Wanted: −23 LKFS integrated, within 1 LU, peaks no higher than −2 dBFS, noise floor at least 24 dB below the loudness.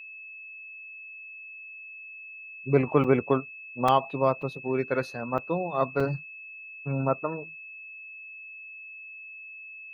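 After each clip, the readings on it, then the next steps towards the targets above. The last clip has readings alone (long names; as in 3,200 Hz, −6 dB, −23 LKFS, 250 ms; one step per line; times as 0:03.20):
number of dropouts 5; longest dropout 4.5 ms; interfering tone 2,600 Hz; level of the tone −41 dBFS; integrated loudness −27.5 LKFS; sample peak −7.5 dBFS; target loudness −23.0 LKFS
→ repair the gap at 0:03.04/0:03.88/0:04.42/0:05.38/0:06.00, 4.5 ms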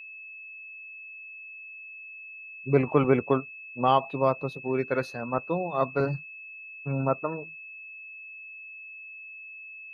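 number of dropouts 0; interfering tone 2,600 Hz; level of the tone −41 dBFS
→ notch filter 2,600 Hz, Q 30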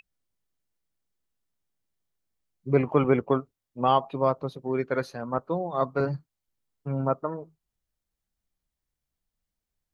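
interfering tone none found; integrated loudness −27.0 LKFS; sample peak −8.0 dBFS; target loudness −23.0 LKFS
→ level +4 dB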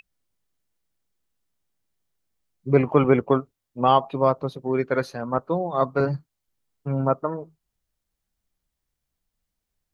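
integrated loudness −23.0 LKFS; sample peak −4.0 dBFS; background noise floor −82 dBFS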